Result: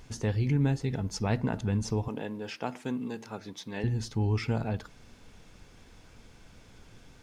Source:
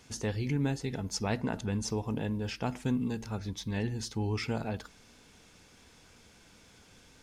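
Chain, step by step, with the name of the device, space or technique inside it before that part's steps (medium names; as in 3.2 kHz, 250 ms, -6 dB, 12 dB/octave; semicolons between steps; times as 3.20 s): car interior (peaking EQ 120 Hz +5.5 dB 0.83 oct; treble shelf 3.7 kHz -6 dB; brown noise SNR 23 dB); 2.08–3.84 s: high-pass 300 Hz 12 dB/octave; trim +1.5 dB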